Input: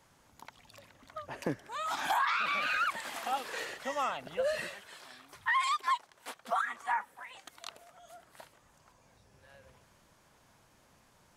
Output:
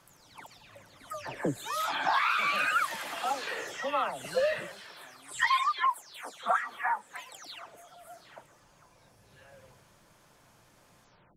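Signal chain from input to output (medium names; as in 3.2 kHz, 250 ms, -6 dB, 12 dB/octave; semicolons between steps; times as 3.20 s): delay that grows with frequency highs early, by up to 318 ms; trim +4 dB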